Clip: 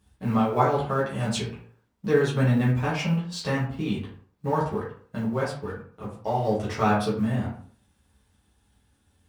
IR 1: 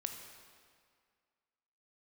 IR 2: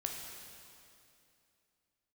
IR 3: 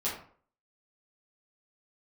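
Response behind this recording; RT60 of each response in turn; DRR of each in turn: 3; 2.0, 2.7, 0.50 s; 4.5, 0.5, -8.5 dB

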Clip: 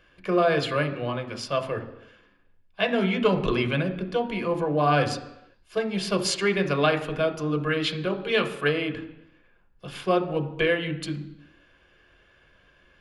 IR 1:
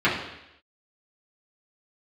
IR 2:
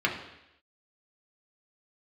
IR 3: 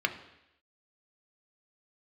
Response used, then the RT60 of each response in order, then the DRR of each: 3; 0.85, 0.85, 0.85 s; -10.0, -1.5, 5.5 dB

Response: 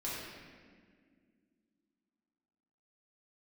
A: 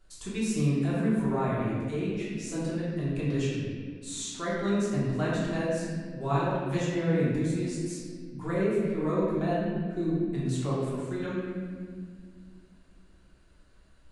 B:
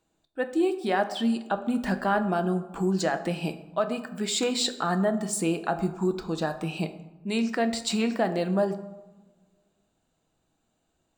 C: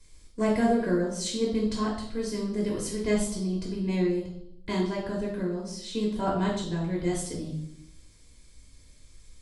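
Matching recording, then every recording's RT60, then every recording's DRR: A; 1.9, 1.2, 0.75 s; -8.5, 8.0, -3.5 dB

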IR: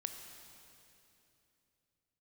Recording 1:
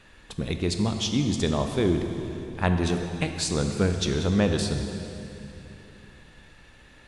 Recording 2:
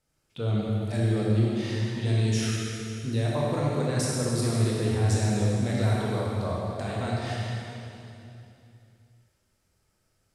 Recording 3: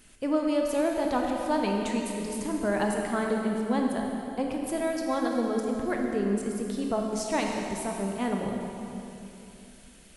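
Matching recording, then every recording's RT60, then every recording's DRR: 1; 2.9, 2.9, 2.9 s; 5.0, -5.0, 0.5 dB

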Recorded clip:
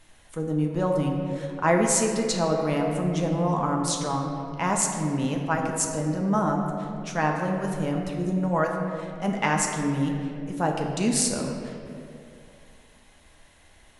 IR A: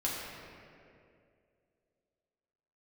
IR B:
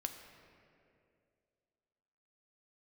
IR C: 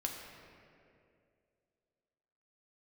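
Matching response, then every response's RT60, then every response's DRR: C; 2.4, 2.4, 2.4 s; -6.0, 5.0, 0.5 dB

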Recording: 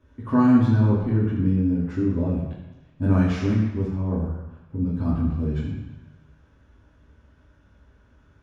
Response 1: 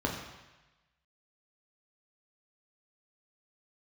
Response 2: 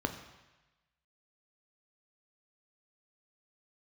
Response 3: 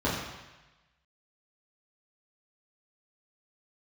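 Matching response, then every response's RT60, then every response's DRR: 3; 1.1, 1.1, 1.1 s; -1.5, 5.5, -9.0 dB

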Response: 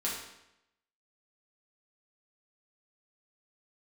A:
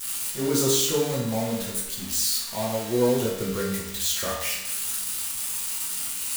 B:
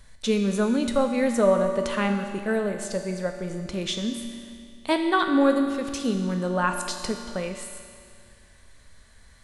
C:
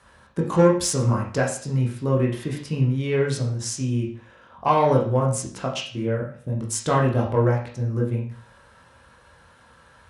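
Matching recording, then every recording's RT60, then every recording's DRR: A; 0.85, 2.3, 0.45 s; -6.0, 4.0, -2.5 dB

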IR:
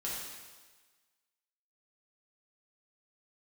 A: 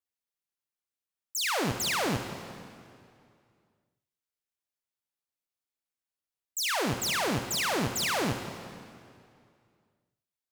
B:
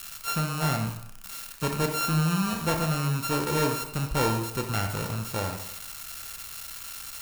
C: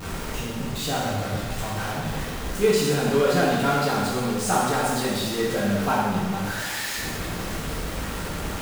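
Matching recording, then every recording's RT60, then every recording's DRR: C; 2.4, 0.75, 1.4 s; 6.5, 3.5, -7.0 dB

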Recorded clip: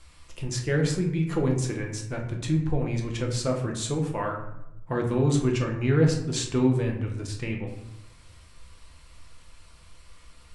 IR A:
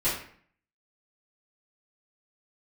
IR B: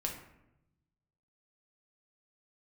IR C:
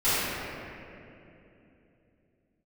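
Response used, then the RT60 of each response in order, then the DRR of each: B; 0.55, 0.85, 2.9 s; -13.5, 0.5, -17.5 dB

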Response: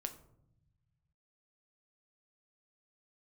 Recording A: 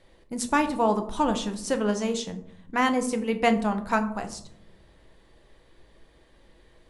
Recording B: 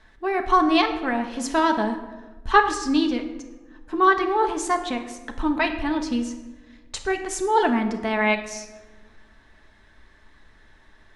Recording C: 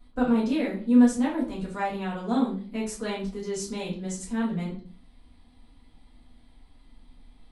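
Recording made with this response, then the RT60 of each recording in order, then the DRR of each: A; 0.75, 1.3, 0.40 s; 6.5, 4.0, -7.0 dB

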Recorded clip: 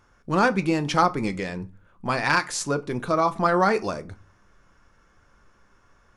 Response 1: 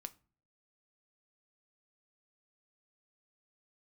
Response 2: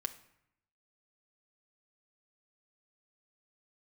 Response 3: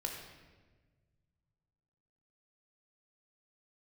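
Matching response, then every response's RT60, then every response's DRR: 1; not exponential, 0.75 s, 1.4 s; 10.0, 7.0, 0.5 dB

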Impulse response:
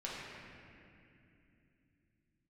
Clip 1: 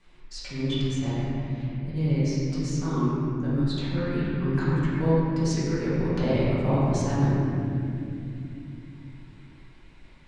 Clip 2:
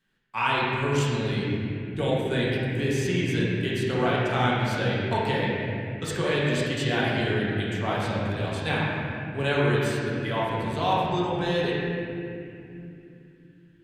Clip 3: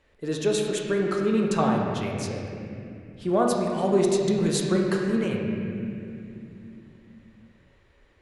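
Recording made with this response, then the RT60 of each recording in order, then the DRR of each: 2; 2.7, 2.7, 2.7 s; -12.0, -7.0, -1.5 dB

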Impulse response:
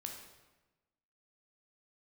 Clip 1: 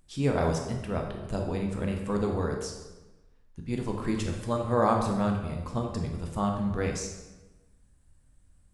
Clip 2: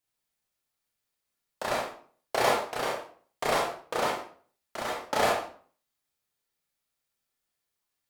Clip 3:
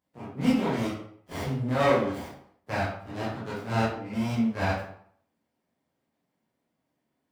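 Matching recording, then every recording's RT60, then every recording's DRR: 1; 1.1, 0.45, 0.65 s; 1.5, -3.0, -8.5 dB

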